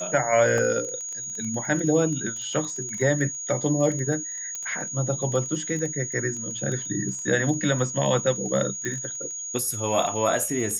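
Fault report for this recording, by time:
surface crackle 13 per second −29 dBFS
whistle 6,700 Hz −31 dBFS
0:00.58: drop-out 2 ms
0:04.55: click −18 dBFS
0:08.85: click −17 dBFS

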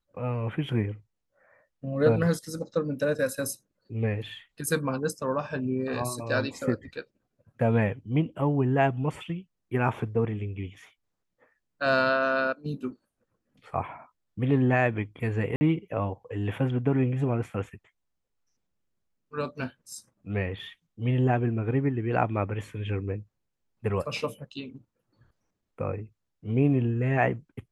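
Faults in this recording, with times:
0:15.56–0:15.61: drop-out 50 ms

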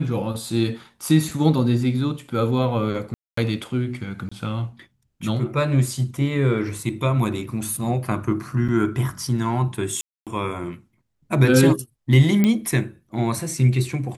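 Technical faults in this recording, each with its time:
0:03.14–0:03.37: drop-out 234 ms
0:04.29–0:04.32: drop-out 25 ms
0:08.68–0:08.69: drop-out 6.8 ms
0:10.01–0:10.27: drop-out 257 ms
0:12.44: click −7 dBFS

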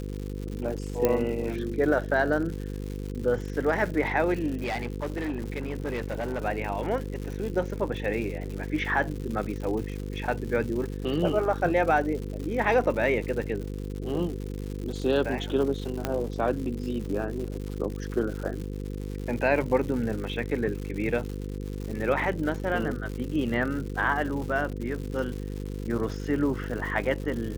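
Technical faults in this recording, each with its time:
mains buzz 50 Hz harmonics 10 −34 dBFS
surface crackle 190 per second −34 dBFS
0:01.05: click −9 dBFS
0:04.63–0:06.45: clipping −26 dBFS
0:16.05: click −12 dBFS

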